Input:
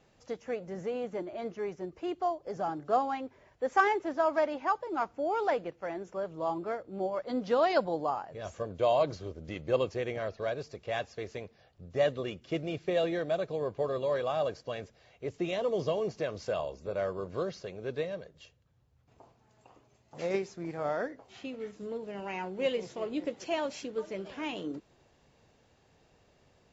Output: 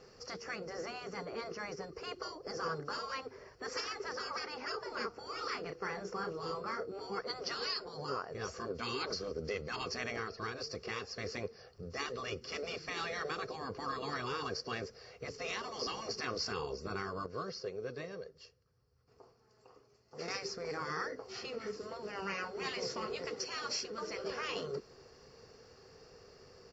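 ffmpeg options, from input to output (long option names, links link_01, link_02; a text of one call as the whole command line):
ffmpeg -i in.wav -filter_complex "[0:a]asplit=3[link_01][link_02][link_03];[link_01]afade=type=out:start_time=4.72:duration=0.02[link_04];[link_02]asplit=2[link_05][link_06];[link_06]adelay=32,volume=-9dB[link_07];[link_05][link_07]amix=inputs=2:normalize=0,afade=type=in:start_time=4.72:duration=0.02,afade=type=out:start_time=7.11:duration=0.02[link_08];[link_03]afade=type=in:start_time=7.11:duration=0.02[link_09];[link_04][link_08][link_09]amix=inputs=3:normalize=0,asplit=3[link_10][link_11][link_12];[link_10]atrim=end=17.262[link_13];[link_11]atrim=start=17.258:end=20.282,asetpts=PTS-STARTPTS,volume=-9dB[link_14];[link_12]atrim=start=20.278[link_15];[link_13][link_14]acrossfade=duration=0.004:curve1=hsin:curve2=hsin[link_16];[link_16][link_15]acrossfade=duration=0.004:curve1=hsin:curve2=hsin,afftfilt=real='re*lt(hypot(re,im),0.0501)':imag='im*lt(hypot(re,im),0.0501)':win_size=1024:overlap=0.75,superequalizer=7b=3.16:10b=2.24:11b=1.41:13b=0.631:14b=3.98,alimiter=level_in=5.5dB:limit=-24dB:level=0:latency=1:release=344,volume=-5.5dB,volume=3dB" out.wav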